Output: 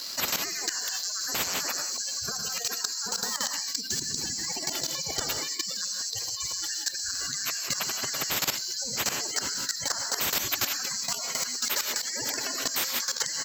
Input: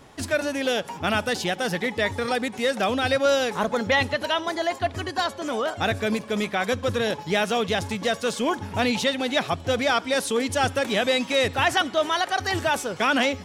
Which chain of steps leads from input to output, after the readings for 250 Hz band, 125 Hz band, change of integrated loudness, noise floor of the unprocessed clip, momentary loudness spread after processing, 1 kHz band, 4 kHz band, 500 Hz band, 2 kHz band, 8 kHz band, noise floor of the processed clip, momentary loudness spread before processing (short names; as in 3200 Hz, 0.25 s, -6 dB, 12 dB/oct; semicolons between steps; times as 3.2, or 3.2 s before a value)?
-17.0 dB, -14.0 dB, -4.0 dB, -41 dBFS, 3 LU, -13.0 dB, -0.5 dB, -19.5 dB, -9.5 dB, +10.0 dB, -36 dBFS, 5 LU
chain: band-swap scrambler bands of 4000 Hz; recorder AGC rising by 17 dB/s; HPF 77 Hz; spectral gate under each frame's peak -30 dB strong; low shelf 140 Hz -6.5 dB; non-linear reverb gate 0.2 s rising, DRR 7 dB; in parallel at -1.5 dB: limiter -16.5 dBFS, peak gain reduction 8.5 dB; on the sum: crossover distortion -49.5 dBFS; on a send: echo 92 ms -20.5 dB; on the sum: level quantiser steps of 17 dB; spectral compressor 10:1; gain -2 dB